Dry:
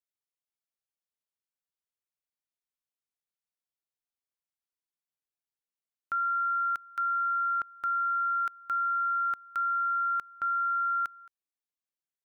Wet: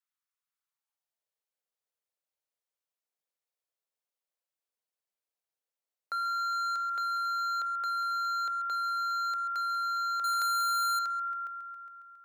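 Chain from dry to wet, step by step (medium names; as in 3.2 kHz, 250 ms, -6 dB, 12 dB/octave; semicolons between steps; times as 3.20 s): multi-head delay 137 ms, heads all three, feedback 48%, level -15.5 dB; in parallel at 0 dB: wavefolder -30.5 dBFS; on the sum: high-pass sweep 1.2 kHz -> 510 Hz, 0.64–1.31 s; 10.24–10.99 s: waveshaping leveller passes 5; trim -7 dB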